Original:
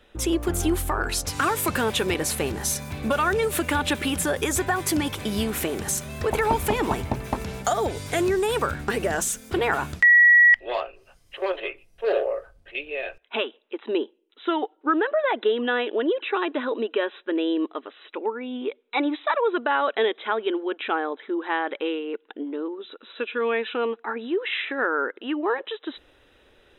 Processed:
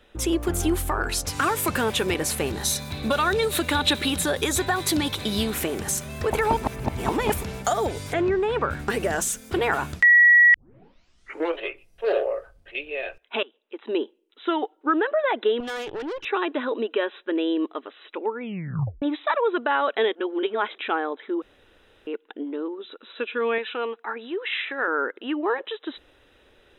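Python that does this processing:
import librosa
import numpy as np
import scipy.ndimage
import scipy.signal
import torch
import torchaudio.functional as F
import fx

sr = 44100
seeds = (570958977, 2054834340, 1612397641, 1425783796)

y = fx.peak_eq(x, sr, hz=3900.0, db=14.5, octaves=0.24, at=(2.52, 5.54))
y = fx.lowpass(y, sr, hz=2500.0, slope=12, at=(8.12, 8.7), fade=0.02)
y = fx.tube_stage(y, sr, drive_db=28.0, bias=0.7, at=(15.6, 16.25))
y = fx.low_shelf(y, sr, hz=300.0, db=-12.0, at=(23.58, 24.88))
y = fx.edit(y, sr, fx.reverse_span(start_s=6.57, length_s=0.86),
    fx.tape_start(start_s=10.54, length_s=1.06),
    fx.fade_in_from(start_s=13.43, length_s=0.57, floor_db=-19.0),
    fx.tape_stop(start_s=18.41, length_s=0.61),
    fx.reverse_span(start_s=20.15, length_s=0.63),
    fx.room_tone_fill(start_s=21.42, length_s=0.65), tone=tone)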